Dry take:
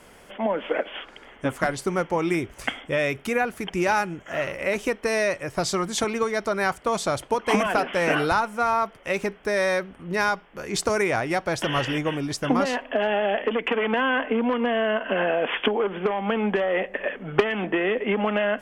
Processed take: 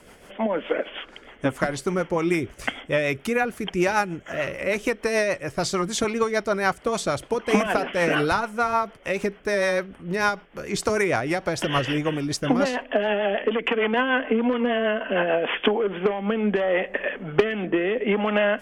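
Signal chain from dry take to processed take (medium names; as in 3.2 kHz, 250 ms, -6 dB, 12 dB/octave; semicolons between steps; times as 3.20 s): rotary cabinet horn 6.7 Hz, later 0.7 Hz, at 15.31 s; trim +3 dB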